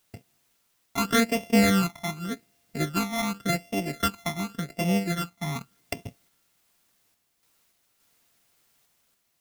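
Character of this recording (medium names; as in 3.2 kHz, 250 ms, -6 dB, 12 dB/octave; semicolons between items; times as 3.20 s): a buzz of ramps at a fixed pitch in blocks of 64 samples; phasing stages 12, 0.87 Hz, lowest notch 480–1400 Hz; a quantiser's noise floor 12-bit, dither triangular; random-step tremolo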